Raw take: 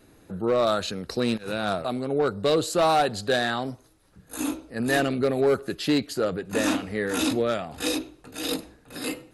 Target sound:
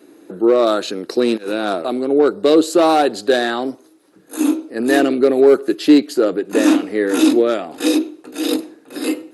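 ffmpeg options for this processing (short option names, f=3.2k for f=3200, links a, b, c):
-af "highpass=f=320:t=q:w=3.6,volume=4.5dB"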